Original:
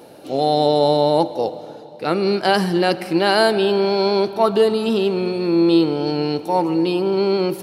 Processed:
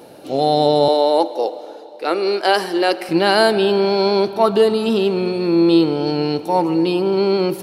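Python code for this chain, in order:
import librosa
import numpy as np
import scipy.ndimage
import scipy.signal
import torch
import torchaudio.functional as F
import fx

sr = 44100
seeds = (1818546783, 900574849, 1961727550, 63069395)

y = fx.highpass(x, sr, hz=310.0, slope=24, at=(0.88, 3.09))
y = F.gain(torch.from_numpy(y), 1.5).numpy()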